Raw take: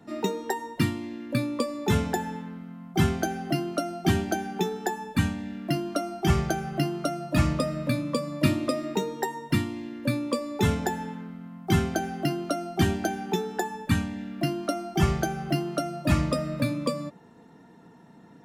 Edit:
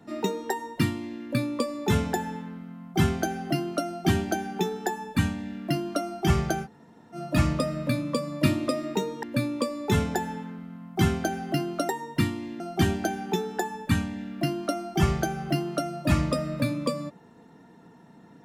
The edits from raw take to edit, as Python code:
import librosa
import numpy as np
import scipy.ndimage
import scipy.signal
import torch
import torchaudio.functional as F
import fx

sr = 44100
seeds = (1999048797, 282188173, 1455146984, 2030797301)

y = fx.edit(x, sr, fx.room_tone_fill(start_s=6.65, length_s=0.5, crossfade_s=0.06),
    fx.move(start_s=9.23, length_s=0.71, to_s=12.6), tone=tone)